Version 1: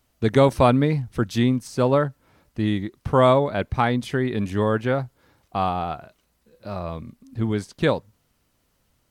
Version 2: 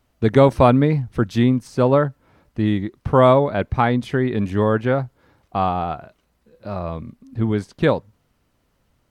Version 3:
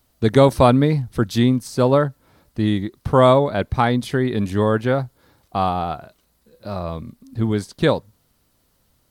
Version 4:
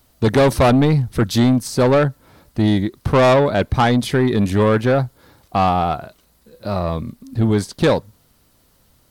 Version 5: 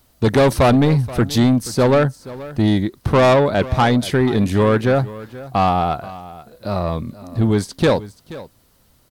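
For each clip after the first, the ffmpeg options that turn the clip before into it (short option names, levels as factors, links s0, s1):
-af "highshelf=f=3600:g=-9.5,volume=1.5"
-af "aexciter=amount=3:drive=3:freq=3600"
-af "asoftclip=type=tanh:threshold=0.168,volume=2.11"
-af "aecho=1:1:479:0.133"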